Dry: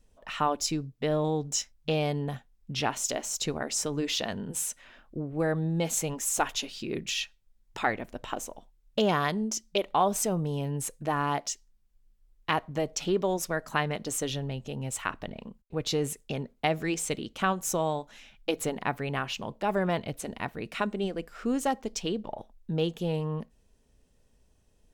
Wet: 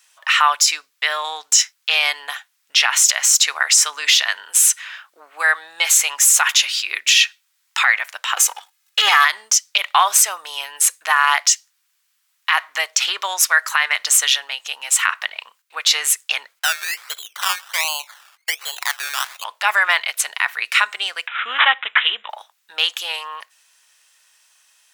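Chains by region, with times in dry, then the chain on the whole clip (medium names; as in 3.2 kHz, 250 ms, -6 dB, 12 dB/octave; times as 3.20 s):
8.37–9.25 s: comb 2.4 ms, depth 92% + waveshaping leveller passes 1
16.59–19.44 s: low-pass 1.3 kHz + compression 1.5:1, threshold -40 dBFS + decimation with a swept rate 17×, swing 60% 1.3 Hz
21.27–22.30 s: tone controls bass +14 dB, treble +14 dB + careless resampling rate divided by 6×, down none, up filtered
whole clip: high-pass 1.2 kHz 24 dB/octave; dynamic bell 2 kHz, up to +4 dB, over -48 dBFS, Q 2.9; loudness maximiser +23 dB; trim -2 dB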